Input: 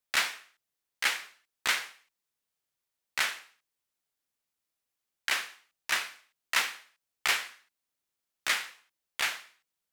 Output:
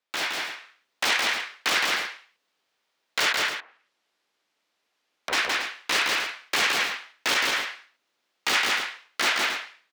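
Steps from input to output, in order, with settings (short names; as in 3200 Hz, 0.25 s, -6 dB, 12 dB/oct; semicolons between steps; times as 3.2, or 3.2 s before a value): wrapped overs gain 24.5 dB; three-band isolator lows -19 dB, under 220 Hz, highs -19 dB, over 5200 Hz; 3.32–5.33 treble ducked by the level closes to 1100 Hz, closed at -46.5 dBFS; AGC gain up to 7.5 dB; loudspeakers at several distances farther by 57 m -3 dB, 95 m -12 dB; core saturation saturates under 3500 Hz; gain +7 dB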